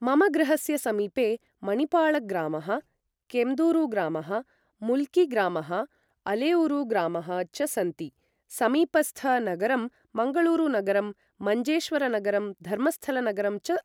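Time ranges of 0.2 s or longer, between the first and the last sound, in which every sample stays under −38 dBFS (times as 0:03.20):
0:01.36–0:01.63
0:02.80–0:03.30
0:04.41–0:04.82
0:05.85–0:06.26
0:08.08–0:08.51
0:09.88–0:10.15
0:11.12–0:11.41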